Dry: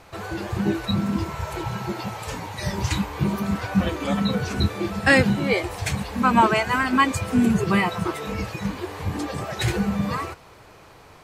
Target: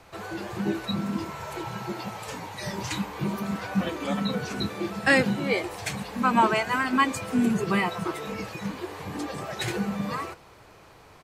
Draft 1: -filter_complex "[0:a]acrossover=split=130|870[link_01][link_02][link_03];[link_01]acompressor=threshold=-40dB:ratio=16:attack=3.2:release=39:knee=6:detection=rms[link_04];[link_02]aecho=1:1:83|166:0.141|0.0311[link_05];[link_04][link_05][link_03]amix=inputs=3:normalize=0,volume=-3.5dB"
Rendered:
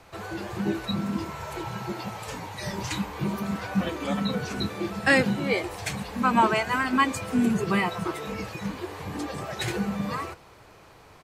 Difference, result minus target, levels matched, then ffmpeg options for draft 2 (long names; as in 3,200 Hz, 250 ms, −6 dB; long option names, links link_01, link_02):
downward compressor: peak gain reduction −8.5 dB
-filter_complex "[0:a]acrossover=split=130|870[link_01][link_02][link_03];[link_01]acompressor=threshold=-49dB:ratio=16:attack=3.2:release=39:knee=6:detection=rms[link_04];[link_02]aecho=1:1:83|166:0.141|0.0311[link_05];[link_04][link_05][link_03]amix=inputs=3:normalize=0,volume=-3.5dB"